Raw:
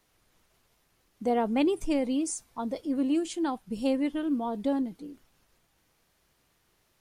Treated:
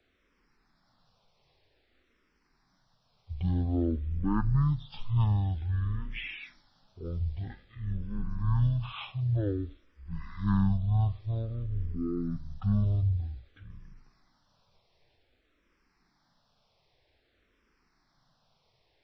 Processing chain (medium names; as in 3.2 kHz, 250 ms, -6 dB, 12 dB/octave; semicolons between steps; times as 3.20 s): octave divider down 2 oct, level -4 dB; wide varispeed 0.368×; barber-pole phaser -0.52 Hz; trim +1.5 dB